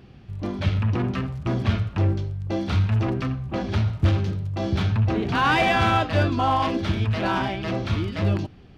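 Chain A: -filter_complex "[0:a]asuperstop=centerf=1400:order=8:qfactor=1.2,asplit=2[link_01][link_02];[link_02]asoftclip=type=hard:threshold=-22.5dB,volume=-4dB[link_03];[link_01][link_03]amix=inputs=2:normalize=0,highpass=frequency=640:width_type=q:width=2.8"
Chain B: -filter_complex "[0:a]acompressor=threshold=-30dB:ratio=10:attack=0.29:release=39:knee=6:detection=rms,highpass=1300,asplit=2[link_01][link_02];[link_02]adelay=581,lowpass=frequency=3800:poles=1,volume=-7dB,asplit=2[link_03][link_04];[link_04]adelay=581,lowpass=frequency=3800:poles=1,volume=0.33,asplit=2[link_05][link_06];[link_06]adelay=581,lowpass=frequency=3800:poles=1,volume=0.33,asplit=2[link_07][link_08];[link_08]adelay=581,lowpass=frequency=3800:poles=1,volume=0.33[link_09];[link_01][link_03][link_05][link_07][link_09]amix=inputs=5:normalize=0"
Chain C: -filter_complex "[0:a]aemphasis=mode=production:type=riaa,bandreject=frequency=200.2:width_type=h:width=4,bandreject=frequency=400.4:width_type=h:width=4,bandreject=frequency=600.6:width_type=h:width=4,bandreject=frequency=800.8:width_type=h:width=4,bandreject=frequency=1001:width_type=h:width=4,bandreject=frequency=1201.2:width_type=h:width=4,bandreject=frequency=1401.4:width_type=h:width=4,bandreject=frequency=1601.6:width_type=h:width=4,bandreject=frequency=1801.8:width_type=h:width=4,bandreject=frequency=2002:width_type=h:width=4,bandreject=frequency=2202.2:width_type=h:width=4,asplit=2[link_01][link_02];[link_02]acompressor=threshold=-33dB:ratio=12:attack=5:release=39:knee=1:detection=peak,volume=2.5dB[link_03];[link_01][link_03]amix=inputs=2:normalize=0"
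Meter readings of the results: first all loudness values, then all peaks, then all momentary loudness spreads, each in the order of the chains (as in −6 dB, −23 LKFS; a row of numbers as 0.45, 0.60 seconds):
−21.5, −44.0, −23.0 LKFS; −2.5, −28.5, −6.0 dBFS; 16, 12, 11 LU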